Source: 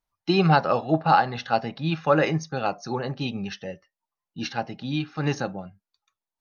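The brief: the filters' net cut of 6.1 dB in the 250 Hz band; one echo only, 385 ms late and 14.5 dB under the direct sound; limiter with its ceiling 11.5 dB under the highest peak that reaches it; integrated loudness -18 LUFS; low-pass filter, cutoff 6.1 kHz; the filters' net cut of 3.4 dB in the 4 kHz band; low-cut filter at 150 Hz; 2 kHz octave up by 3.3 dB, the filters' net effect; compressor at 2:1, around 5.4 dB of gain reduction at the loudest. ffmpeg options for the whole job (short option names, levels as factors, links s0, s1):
-af "highpass=150,lowpass=6100,equalizer=f=250:t=o:g=-8.5,equalizer=f=2000:t=o:g=6.5,equalizer=f=4000:t=o:g=-6.5,acompressor=threshold=0.0708:ratio=2,alimiter=limit=0.075:level=0:latency=1,aecho=1:1:385:0.188,volume=6.68"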